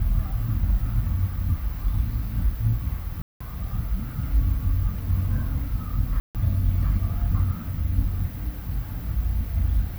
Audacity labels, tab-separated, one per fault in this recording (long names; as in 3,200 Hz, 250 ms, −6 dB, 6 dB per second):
3.220000	3.400000	drop-out 185 ms
6.200000	6.350000	drop-out 148 ms